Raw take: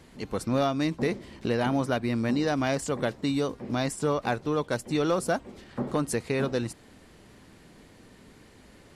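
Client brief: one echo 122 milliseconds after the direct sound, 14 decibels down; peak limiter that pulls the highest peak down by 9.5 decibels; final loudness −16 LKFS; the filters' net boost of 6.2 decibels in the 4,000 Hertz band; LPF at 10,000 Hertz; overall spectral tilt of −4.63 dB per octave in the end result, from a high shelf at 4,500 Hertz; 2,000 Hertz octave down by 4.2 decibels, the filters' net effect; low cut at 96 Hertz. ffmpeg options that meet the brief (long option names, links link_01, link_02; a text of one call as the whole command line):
ffmpeg -i in.wav -af "highpass=96,lowpass=10000,equalizer=frequency=2000:width_type=o:gain=-8.5,equalizer=frequency=4000:width_type=o:gain=8,highshelf=frequency=4500:gain=3.5,alimiter=limit=-23dB:level=0:latency=1,aecho=1:1:122:0.2,volume=17dB" out.wav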